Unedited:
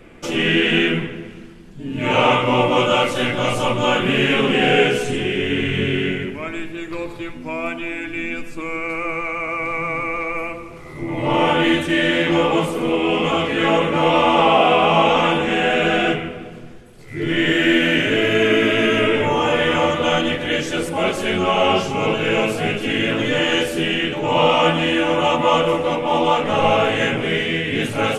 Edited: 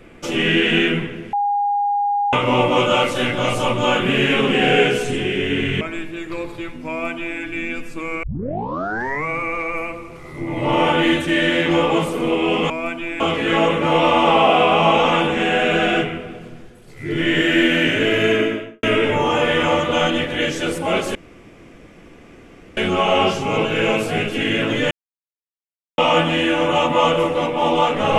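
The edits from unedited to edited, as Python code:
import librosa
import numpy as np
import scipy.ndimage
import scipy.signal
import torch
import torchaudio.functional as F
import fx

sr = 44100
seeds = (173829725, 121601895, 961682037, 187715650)

y = fx.studio_fade_out(x, sr, start_s=18.36, length_s=0.58)
y = fx.edit(y, sr, fx.bleep(start_s=1.33, length_s=1.0, hz=815.0, db=-16.0),
    fx.cut(start_s=5.81, length_s=0.61),
    fx.duplicate(start_s=7.5, length_s=0.5, to_s=13.31),
    fx.tape_start(start_s=8.84, length_s=1.07),
    fx.insert_room_tone(at_s=21.26, length_s=1.62),
    fx.silence(start_s=23.4, length_s=1.07), tone=tone)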